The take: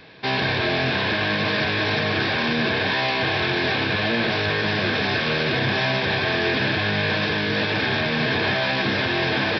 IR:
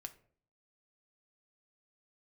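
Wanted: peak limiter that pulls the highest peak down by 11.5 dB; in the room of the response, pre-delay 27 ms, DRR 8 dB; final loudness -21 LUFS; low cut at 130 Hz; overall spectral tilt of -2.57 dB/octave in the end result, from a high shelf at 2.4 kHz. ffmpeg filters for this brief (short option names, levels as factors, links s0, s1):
-filter_complex "[0:a]highpass=130,highshelf=f=2400:g=-6,alimiter=limit=0.0708:level=0:latency=1,asplit=2[s0][s1];[1:a]atrim=start_sample=2205,adelay=27[s2];[s1][s2]afir=irnorm=-1:irlink=0,volume=0.708[s3];[s0][s3]amix=inputs=2:normalize=0,volume=2.82"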